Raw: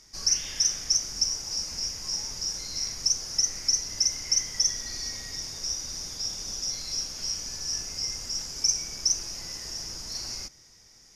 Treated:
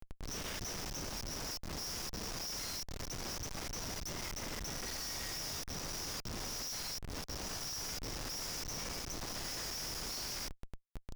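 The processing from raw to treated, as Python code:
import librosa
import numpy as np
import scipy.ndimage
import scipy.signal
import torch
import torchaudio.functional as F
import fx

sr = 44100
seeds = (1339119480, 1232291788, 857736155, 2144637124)

y = fx.auto_swell(x, sr, attack_ms=545.0)
y = fx.schmitt(y, sr, flips_db=-45.0)
y = F.gain(torch.from_numpy(y), -1.5).numpy()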